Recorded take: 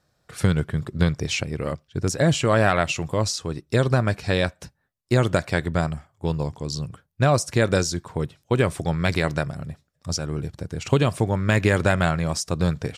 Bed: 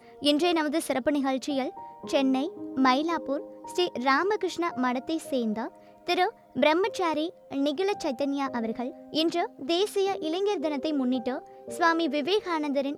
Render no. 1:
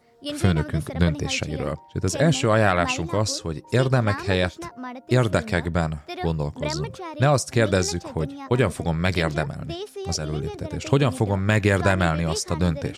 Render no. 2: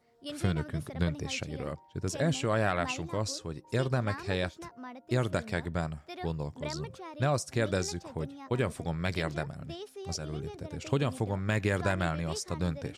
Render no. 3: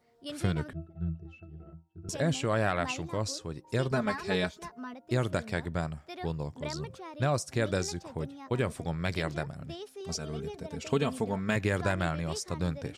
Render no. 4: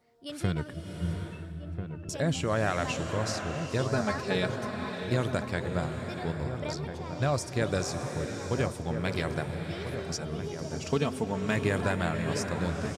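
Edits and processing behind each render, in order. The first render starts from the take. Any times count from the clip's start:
add bed -8 dB
trim -9.5 dB
0.73–2.09 s: pitch-class resonator E, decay 0.22 s; 3.91–4.94 s: comb 4.7 ms, depth 90%; 10.00–11.56 s: comb 4.5 ms
echo from a far wall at 230 m, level -8 dB; swelling reverb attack 720 ms, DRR 5.5 dB

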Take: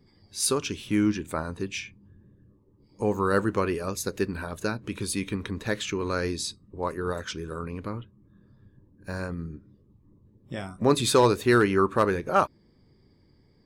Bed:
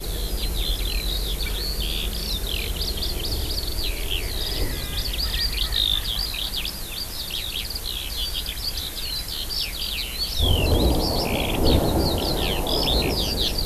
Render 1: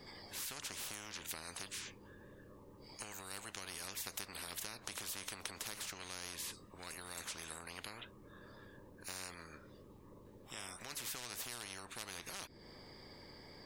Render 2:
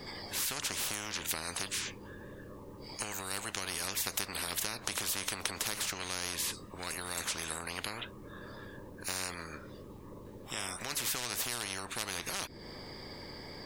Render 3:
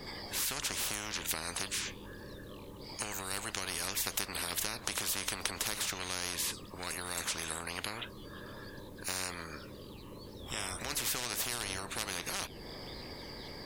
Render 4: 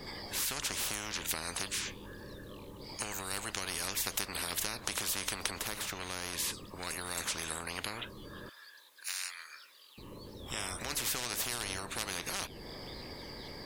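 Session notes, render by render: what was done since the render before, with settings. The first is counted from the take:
compression 5:1, threshold -32 dBFS, peak gain reduction 15.5 dB; spectrum-flattening compressor 10:1
trim +9.5 dB
add bed -30.5 dB
5.59–6.33 s: peaking EQ 6.2 kHz -5 dB 2.2 oct; 8.49–9.98 s: Chebyshev high-pass 1.9 kHz

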